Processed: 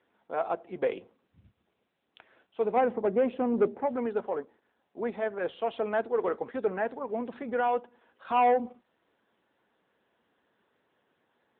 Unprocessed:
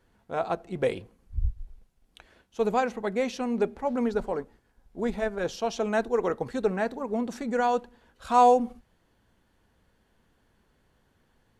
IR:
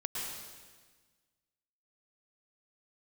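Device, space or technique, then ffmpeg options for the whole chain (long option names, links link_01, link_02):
telephone: -filter_complex "[0:a]asplit=3[link_01][link_02][link_03];[link_01]afade=type=out:start_time=2.75:duration=0.02[link_04];[link_02]tiltshelf=frequency=1300:gain=8.5,afade=type=in:start_time=2.75:duration=0.02,afade=type=out:start_time=3.85:duration=0.02[link_05];[link_03]afade=type=in:start_time=3.85:duration=0.02[link_06];[link_04][link_05][link_06]amix=inputs=3:normalize=0,highpass=310,lowpass=3400,asoftclip=type=tanh:threshold=-16.5dB" -ar 8000 -c:a libopencore_amrnb -b:a 10200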